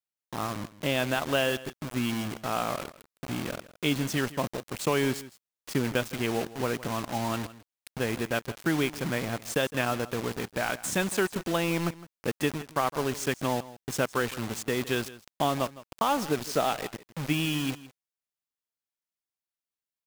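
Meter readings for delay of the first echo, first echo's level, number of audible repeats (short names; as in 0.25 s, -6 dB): 0.161 s, -17.5 dB, 1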